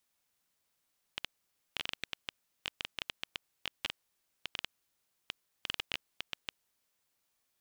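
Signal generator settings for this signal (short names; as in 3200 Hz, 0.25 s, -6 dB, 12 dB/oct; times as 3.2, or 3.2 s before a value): random clicks 8.4/s -17 dBFS 5.39 s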